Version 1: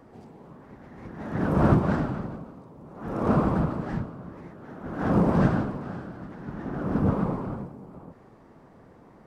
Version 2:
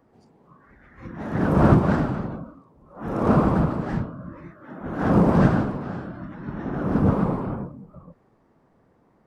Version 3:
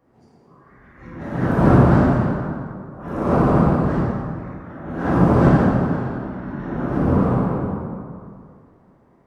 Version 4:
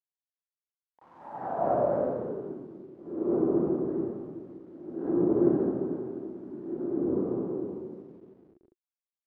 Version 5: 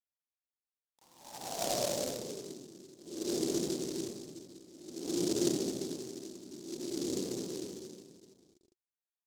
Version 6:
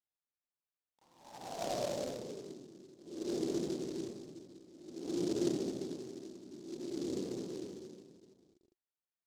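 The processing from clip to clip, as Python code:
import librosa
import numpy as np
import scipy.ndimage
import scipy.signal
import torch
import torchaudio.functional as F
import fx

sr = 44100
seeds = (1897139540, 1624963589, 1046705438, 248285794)

y1 = fx.noise_reduce_blind(x, sr, reduce_db=13)
y1 = F.gain(torch.from_numpy(y1), 4.0).numpy()
y2 = fx.rev_plate(y1, sr, seeds[0], rt60_s=2.2, hf_ratio=0.6, predelay_ms=0, drr_db=-7.5)
y2 = F.gain(torch.from_numpy(y2), -4.5).numpy()
y3 = fx.delta_hold(y2, sr, step_db=-36.5)
y3 = fx.filter_sweep_bandpass(y3, sr, from_hz=910.0, to_hz=360.0, start_s=1.24, end_s=2.62, q=6.4)
y3 = F.gain(torch.from_numpy(y3), 1.0).numpy()
y4 = fx.noise_mod_delay(y3, sr, seeds[1], noise_hz=5500.0, depth_ms=0.16)
y4 = F.gain(torch.from_numpy(y4), -7.5).numpy()
y5 = fx.lowpass(y4, sr, hz=2500.0, slope=6)
y5 = F.gain(torch.from_numpy(y5), -2.0).numpy()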